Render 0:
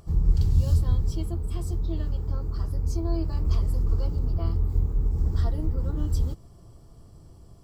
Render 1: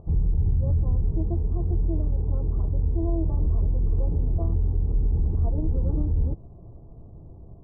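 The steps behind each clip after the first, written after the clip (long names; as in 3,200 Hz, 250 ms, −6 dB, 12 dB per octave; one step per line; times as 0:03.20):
inverse Chebyshev low-pass filter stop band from 2,200 Hz, stop band 50 dB
brickwall limiter −21 dBFS, peak gain reduction 11.5 dB
level +5 dB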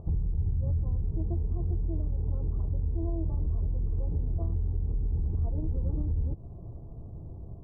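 downward compressor 6 to 1, threshold −28 dBFS, peak gain reduction 9.5 dB
parametric band 88 Hz +3.5 dB 2 octaves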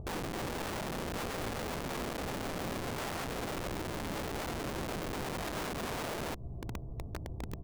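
double-tracking delay 16 ms −7.5 dB
wrap-around overflow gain 32.5 dB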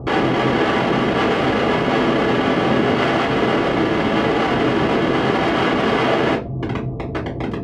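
band-pass filter 220–2,800 Hz
convolution reverb RT60 0.30 s, pre-delay 3 ms, DRR −7.5 dB
level +8.5 dB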